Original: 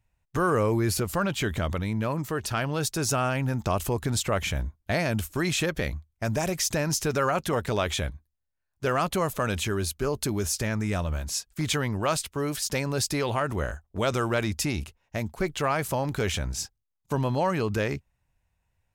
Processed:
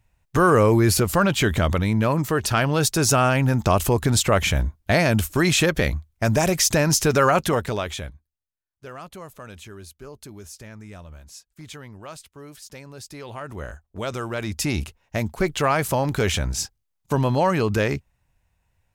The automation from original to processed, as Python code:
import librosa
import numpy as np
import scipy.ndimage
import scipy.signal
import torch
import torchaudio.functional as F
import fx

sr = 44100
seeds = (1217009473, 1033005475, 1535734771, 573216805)

y = fx.gain(x, sr, db=fx.line((7.42, 7.5), (7.85, -1.5), (8.85, -13.0), (13.04, -13.0), (13.73, -3.0), (14.35, -3.0), (14.76, 5.5)))